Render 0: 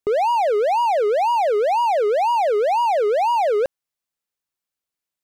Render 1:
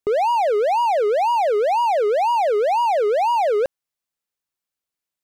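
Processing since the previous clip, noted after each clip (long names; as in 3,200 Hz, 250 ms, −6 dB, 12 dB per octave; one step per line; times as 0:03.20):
no processing that can be heard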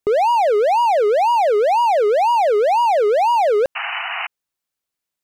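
sound drawn into the spectrogram noise, 0:03.75–0:04.27, 660–3,000 Hz −28 dBFS
level +3 dB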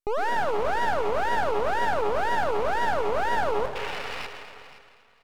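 repeating echo 518 ms, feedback 21%, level −15.5 dB
convolution reverb RT60 1.9 s, pre-delay 97 ms, DRR 7 dB
half-wave rectification
level −6.5 dB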